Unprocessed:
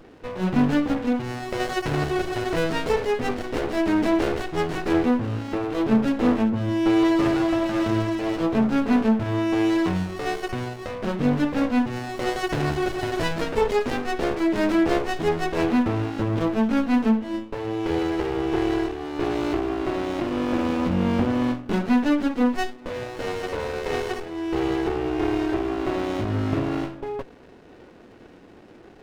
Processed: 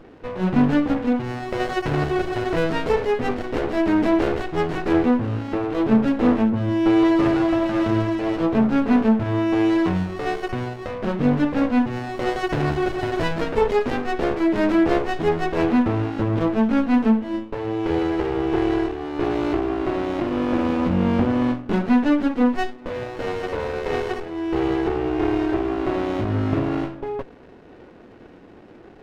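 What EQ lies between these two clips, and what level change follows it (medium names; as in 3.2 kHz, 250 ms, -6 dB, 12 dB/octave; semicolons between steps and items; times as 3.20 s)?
treble shelf 4.6 kHz -11 dB; +2.5 dB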